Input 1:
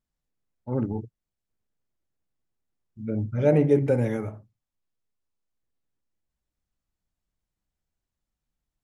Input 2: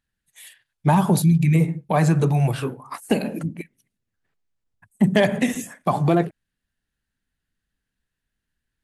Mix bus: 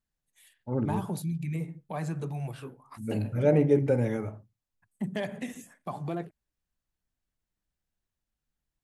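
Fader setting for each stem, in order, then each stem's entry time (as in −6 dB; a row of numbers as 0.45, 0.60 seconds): −2.5, −15.5 decibels; 0.00, 0.00 seconds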